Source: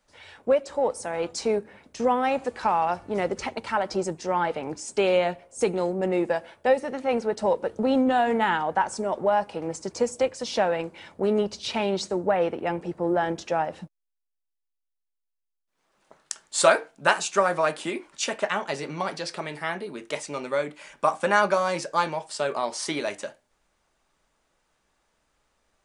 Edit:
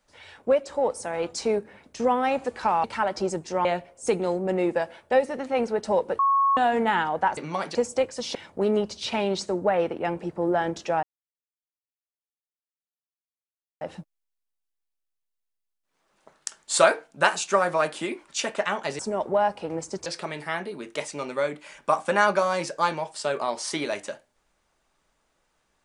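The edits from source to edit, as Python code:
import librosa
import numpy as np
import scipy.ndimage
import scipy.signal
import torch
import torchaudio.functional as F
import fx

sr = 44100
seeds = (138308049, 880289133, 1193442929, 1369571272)

y = fx.edit(x, sr, fx.cut(start_s=2.84, length_s=0.74),
    fx.cut(start_s=4.39, length_s=0.8),
    fx.bleep(start_s=7.73, length_s=0.38, hz=1100.0, db=-17.5),
    fx.swap(start_s=8.91, length_s=1.07, other_s=18.83, other_length_s=0.38),
    fx.cut(start_s=10.58, length_s=0.39),
    fx.insert_silence(at_s=13.65, length_s=2.78), tone=tone)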